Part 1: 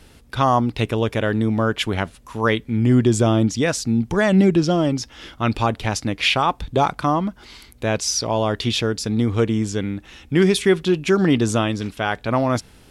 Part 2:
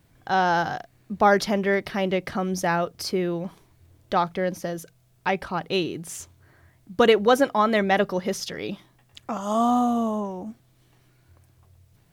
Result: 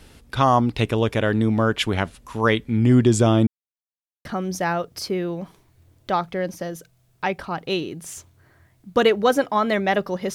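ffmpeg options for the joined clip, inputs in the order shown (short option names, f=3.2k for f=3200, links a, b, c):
-filter_complex "[0:a]apad=whole_dur=10.34,atrim=end=10.34,asplit=2[a][b];[a]atrim=end=3.47,asetpts=PTS-STARTPTS,afade=t=out:st=3.466:d=0.004:c=hsin[c];[b]atrim=start=3.47:end=4.25,asetpts=PTS-STARTPTS,volume=0[d];[1:a]atrim=start=2.28:end=8.37,asetpts=PTS-STARTPTS,afade=t=in:d=0.004:c=hsin[e];[c][d][e]concat=n=3:v=0:a=1"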